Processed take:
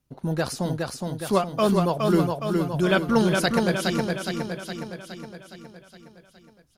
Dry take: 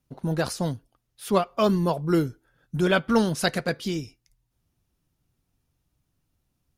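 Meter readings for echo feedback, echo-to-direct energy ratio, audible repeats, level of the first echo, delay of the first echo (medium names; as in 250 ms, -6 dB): 57%, -2.0 dB, 7, -3.5 dB, 415 ms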